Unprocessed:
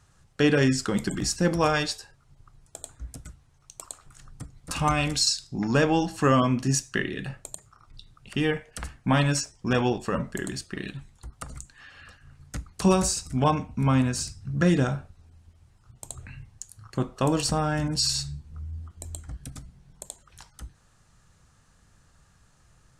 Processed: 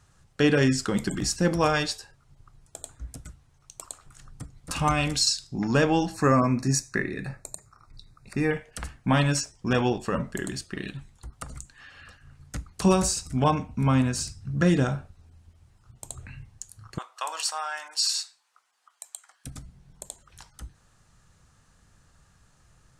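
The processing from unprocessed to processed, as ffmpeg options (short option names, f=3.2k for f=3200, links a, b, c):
-filter_complex "[0:a]asettb=1/sr,asplit=3[a][b][c];[a]atrim=end=6.144[d];[b]atrim=start=6.14:end=8.51,asetpts=PTS-STARTPTS,afade=t=in:d=0.004:c=qsin,afade=t=out:st=2.366:d=0.004:c=qsin,asuperstop=centerf=3100:order=8:qfactor=2.7[e];[c]atrim=start=8.506[f];[d][e]acrossfade=d=0.004:c1=hsin:c2=qsin[g];[g][f]acrossfade=d=0.004:c1=qsin:c2=hsin,asettb=1/sr,asplit=3[h][i][j];[h]atrim=end=16.984[k];[i]atrim=start=16.98:end=19.45,asetpts=PTS-STARTPTS,afade=t=in:d=0.004:c=qsin,afade=t=out:st=2.466:d=0.004:c=qsin,highpass=f=850:w=0.5412,highpass=f=850:w=1.3066[l];[j]atrim=start=19.446[m];[k][l]acrossfade=d=0.004:c1=hsin:c2=qsin[n];[n][m]acrossfade=d=0.004:c1=qsin:c2=hsin"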